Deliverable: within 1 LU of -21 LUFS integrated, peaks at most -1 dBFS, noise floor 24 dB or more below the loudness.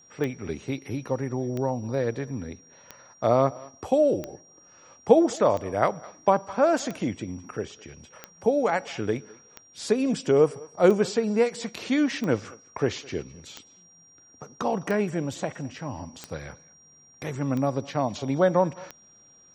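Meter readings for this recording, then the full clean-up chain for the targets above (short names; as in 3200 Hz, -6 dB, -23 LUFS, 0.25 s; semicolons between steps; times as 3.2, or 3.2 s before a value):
clicks 15; steady tone 5700 Hz; tone level -53 dBFS; loudness -26.0 LUFS; peak -4.0 dBFS; loudness target -21.0 LUFS
-> de-click; notch 5700 Hz, Q 30; gain +5 dB; limiter -1 dBFS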